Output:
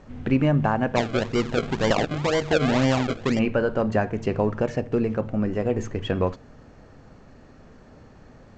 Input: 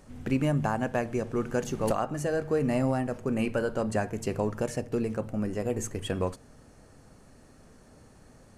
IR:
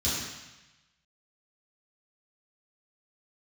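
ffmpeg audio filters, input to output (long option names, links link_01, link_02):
-filter_complex "[0:a]lowpass=3400,asplit=3[link_01][link_02][link_03];[link_01]afade=type=out:start_time=0.95:duration=0.02[link_04];[link_02]acrusher=samples=33:mix=1:aa=0.000001:lfo=1:lforange=33:lforate=2,afade=type=in:start_time=0.95:duration=0.02,afade=type=out:start_time=3.38:duration=0.02[link_05];[link_03]afade=type=in:start_time=3.38:duration=0.02[link_06];[link_04][link_05][link_06]amix=inputs=3:normalize=0,volume=6dB" -ar 16000 -c:a g722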